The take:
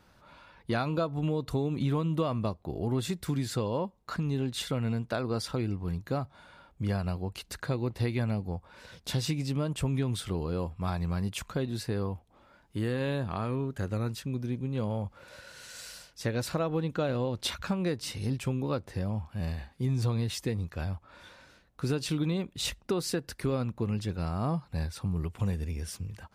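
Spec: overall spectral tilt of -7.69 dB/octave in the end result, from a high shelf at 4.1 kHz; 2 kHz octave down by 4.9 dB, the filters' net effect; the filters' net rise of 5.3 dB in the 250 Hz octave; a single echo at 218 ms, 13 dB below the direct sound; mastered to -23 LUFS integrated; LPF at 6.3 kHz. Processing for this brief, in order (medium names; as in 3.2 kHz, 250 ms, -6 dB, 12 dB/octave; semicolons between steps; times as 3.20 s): low-pass 6.3 kHz; peaking EQ 250 Hz +7 dB; peaking EQ 2 kHz -5 dB; treble shelf 4.1 kHz -8 dB; delay 218 ms -13 dB; trim +6.5 dB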